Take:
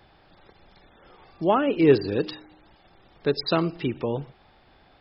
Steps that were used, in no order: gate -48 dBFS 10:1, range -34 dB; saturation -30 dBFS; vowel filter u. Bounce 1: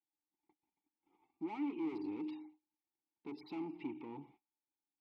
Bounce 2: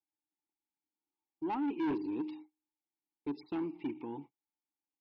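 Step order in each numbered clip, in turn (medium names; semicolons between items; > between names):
saturation > gate > vowel filter; vowel filter > saturation > gate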